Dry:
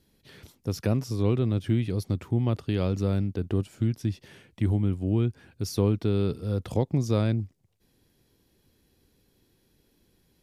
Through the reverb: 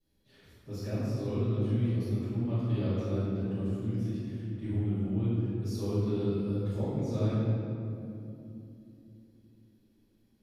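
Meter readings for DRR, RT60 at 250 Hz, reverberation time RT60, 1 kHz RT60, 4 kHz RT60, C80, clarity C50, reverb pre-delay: −17.0 dB, 4.5 s, 2.9 s, 2.5 s, 1.5 s, −2.0 dB, −5.0 dB, 5 ms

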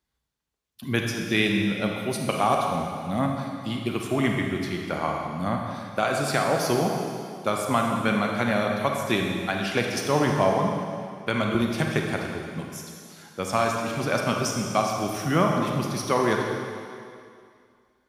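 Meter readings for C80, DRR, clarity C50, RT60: 3.0 dB, 0.5 dB, 1.5 dB, 2.4 s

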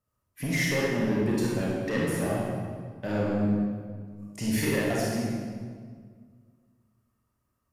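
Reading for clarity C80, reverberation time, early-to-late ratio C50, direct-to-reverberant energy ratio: 0.0 dB, 1.8 s, −2.5 dB, −5.5 dB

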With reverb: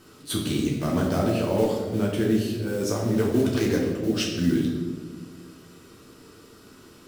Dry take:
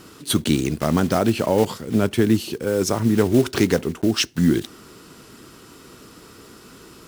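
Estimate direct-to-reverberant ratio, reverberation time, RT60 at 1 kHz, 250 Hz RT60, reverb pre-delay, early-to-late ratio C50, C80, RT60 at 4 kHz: −3.0 dB, 1.5 s, 1.2 s, 2.0 s, 8 ms, 3.0 dB, 4.5 dB, 0.95 s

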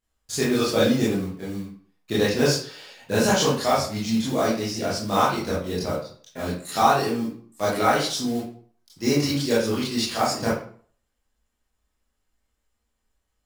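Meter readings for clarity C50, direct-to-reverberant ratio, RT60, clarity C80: 2.0 dB, −9.0 dB, 0.50 s, 8.0 dB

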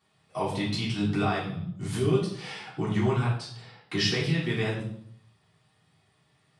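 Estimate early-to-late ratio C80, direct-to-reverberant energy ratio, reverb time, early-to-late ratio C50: 8.5 dB, −8.5 dB, 0.65 s, 4.5 dB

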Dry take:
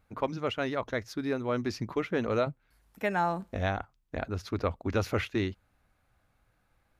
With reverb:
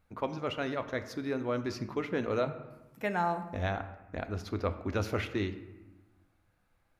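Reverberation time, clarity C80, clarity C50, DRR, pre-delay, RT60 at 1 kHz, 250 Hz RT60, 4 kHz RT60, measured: 1.1 s, 13.5 dB, 12.0 dB, 9.0 dB, 3 ms, 1.2 s, 1.5 s, 0.70 s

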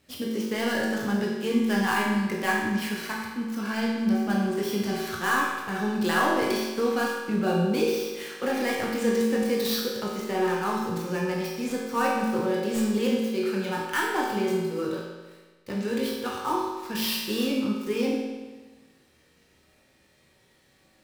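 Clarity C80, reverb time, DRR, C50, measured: 2.5 dB, 1.3 s, −4.0 dB, 0.5 dB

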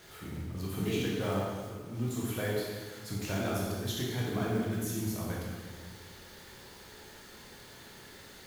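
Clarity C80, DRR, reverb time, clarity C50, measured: 1.5 dB, −4.5 dB, 1.6 s, −0.5 dB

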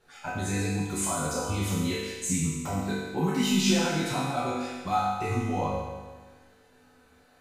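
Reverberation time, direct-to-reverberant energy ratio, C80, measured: 1.4 s, −10.0 dB, 1.0 dB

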